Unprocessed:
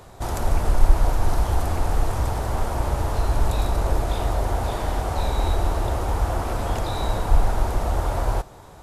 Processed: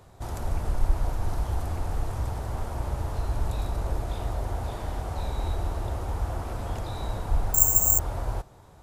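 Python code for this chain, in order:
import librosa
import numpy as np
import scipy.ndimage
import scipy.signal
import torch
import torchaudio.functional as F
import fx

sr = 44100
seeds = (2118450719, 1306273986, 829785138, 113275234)

y = fx.peak_eq(x, sr, hz=99.0, db=5.0, octaves=2.2)
y = fx.resample_bad(y, sr, factor=6, down='filtered', up='zero_stuff', at=(7.54, 7.99))
y = y * librosa.db_to_amplitude(-9.5)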